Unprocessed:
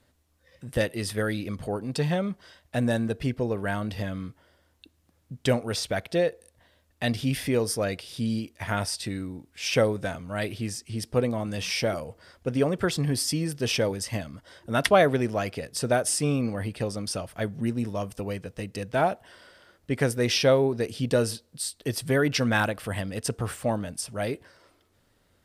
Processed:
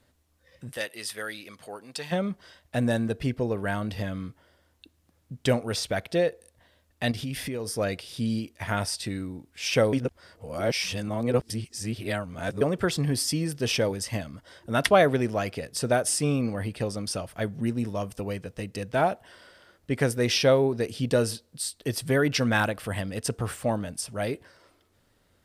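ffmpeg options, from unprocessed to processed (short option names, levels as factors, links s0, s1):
-filter_complex "[0:a]asplit=3[s0][s1][s2];[s0]afade=t=out:st=0.72:d=0.02[s3];[s1]highpass=f=1400:p=1,afade=t=in:st=0.72:d=0.02,afade=t=out:st=2.11:d=0.02[s4];[s2]afade=t=in:st=2.11:d=0.02[s5];[s3][s4][s5]amix=inputs=3:normalize=0,asettb=1/sr,asplit=3[s6][s7][s8];[s6]atrim=end=7.114[s9];[s7]atrim=start=7.11:end=7.77,asetpts=PTS-STARTPTS,afade=t=in:d=0.004:c=qsin,afade=t=out:st=0.656:d=0.004:c=qsin,acompressor=threshold=0.0355:ratio=5:attack=3.2:release=140:knee=1:detection=peak[s10];[s8]atrim=start=7.766[s11];[s9][s10]acrossfade=d=0.004:c1=hsin:c2=qsin[s12];[s12][s11]acrossfade=d=0.004:c1=qsin:c2=hsin,asplit=3[s13][s14][s15];[s13]atrim=end=9.932[s16];[s14]atrim=start=9.928:end=12.612,asetpts=PTS-STARTPTS,areverse[s17];[s15]atrim=start=12.608[s18];[s16][s17]acrossfade=d=0.004:c1=hsin:c2=hsin[s19];[s19][s18]acrossfade=d=0.004:c1=hsin:c2=hsin"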